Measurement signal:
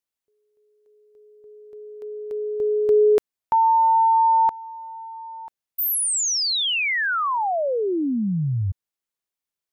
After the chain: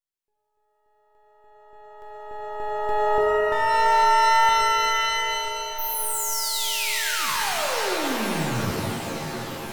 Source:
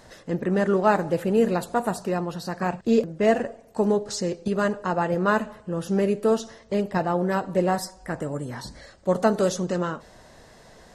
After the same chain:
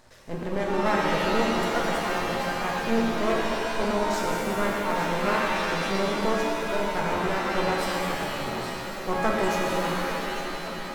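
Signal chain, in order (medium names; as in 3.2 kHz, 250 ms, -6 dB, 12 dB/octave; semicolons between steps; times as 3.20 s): shuffle delay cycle 1417 ms, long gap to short 1.5:1, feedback 50%, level -12 dB; half-wave rectifier; pitch-shifted reverb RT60 2.3 s, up +7 st, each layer -2 dB, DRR -2 dB; trim -4 dB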